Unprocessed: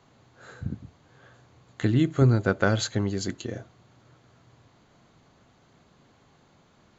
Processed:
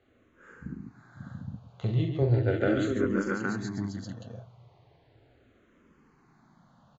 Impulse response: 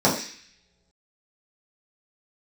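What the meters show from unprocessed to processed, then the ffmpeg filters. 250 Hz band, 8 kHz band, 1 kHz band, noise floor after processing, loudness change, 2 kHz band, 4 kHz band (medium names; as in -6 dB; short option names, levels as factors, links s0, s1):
-2.5 dB, no reading, -4.0 dB, -64 dBFS, -4.0 dB, -3.0 dB, -10.0 dB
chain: -filter_complex "[0:a]aemphasis=mode=reproduction:type=75fm,aecho=1:1:42|66|140|543|687|817:0.501|0.266|0.447|0.447|0.562|0.708,asplit=2[s0][s1];[s1]afreqshift=-0.37[s2];[s0][s2]amix=inputs=2:normalize=1,volume=0.668"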